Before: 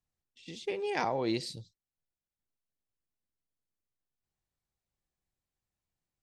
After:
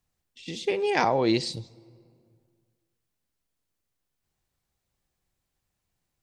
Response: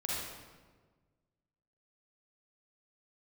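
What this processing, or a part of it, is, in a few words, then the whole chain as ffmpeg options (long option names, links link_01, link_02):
ducked reverb: -filter_complex "[0:a]asettb=1/sr,asplit=3[link_01][link_02][link_03];[link_01]atrim=end=0.914[link_04];[link_02]atrim=start=0.91:end=1.53,asetpts=PTS-STARTPTS,afade=type=in:duration=0.004:curve=qsin,afade=type=out:start_time=0.616:duration=0.004:curve=qsin,lowpass=frequency=8400:width=0.5412,lowpass=frequency=8400:width=1.3066[link_05];[link_03]atrim=start=1.526[link_06];[link_04][link_05]acrossfade=duration=0.004:curve1=hsin:curve2=qsin[link_07];[link_07][link_06]acrossfade=duration=0.004:curve1=qsin:curve2=hsin,asplit=3[link_08][link_09][link_10];[1:a]atrim=start_sample=2205[link_11];[link_09][link_11]afir=irnorm=-1:irlink=0[link_12];[link_10]apad=whole_len=274487[link_13];[link_12][link_13]sidechaincompress=threshold=-43dB:ratio=12:attack=21:release=760,volume=-14.5dB[link_14];[link_08][link_14]amix=inputs=2:normalize=0,volume=8dB"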